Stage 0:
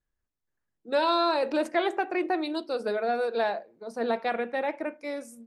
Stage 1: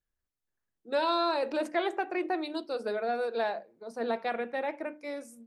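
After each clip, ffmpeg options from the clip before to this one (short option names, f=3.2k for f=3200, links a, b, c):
-af "bandreject=f=50:t=h:w=6,bandreject=f=100:t=h:w=6,bandreject=f=150:t=h:w=6,bandreject=f=200:t=h:w=6,bandreject=f=250:t=h:w=6,bandreject=f=300:t=h:w=6,volume=-3.5dB"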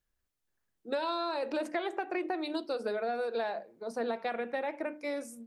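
-af "acompressor=threshold=-34dB:ratio=6,volume=4dB"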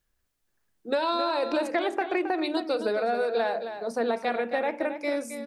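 -af "aecho=1:1:268:0.335,volume=6.5dB"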